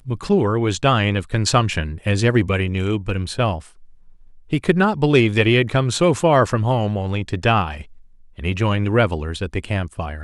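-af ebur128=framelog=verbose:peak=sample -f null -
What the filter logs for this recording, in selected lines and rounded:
Integrated loudness:
  I:         -19.2 LUFS
  Threshold: -29.7 LUFS
Loudness range:
  LRA:         4.1 LU
  Threshold: -39.6 LUFS
  LRA low:   -21.9 LUFS
  LRA high:  -17.8 LUFS
Sample peak:
  Peak:       -1.7 dBFS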